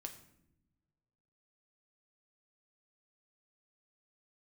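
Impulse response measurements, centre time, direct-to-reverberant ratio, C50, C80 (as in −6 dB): 12 ms, 4.0 dB, 11.0 dB, 13.5 dB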